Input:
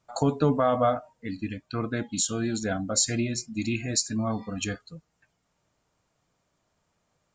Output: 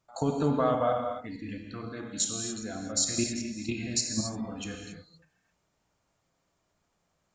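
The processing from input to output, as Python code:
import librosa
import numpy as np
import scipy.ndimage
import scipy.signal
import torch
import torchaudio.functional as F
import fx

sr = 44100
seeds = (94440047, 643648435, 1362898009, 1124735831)

y = fx.level_steps(x, sr, step_db=13)
y = fx.rev_gated(y, sr, seeds[0], gate_ms=300, shape='flat', drr_db=2.0)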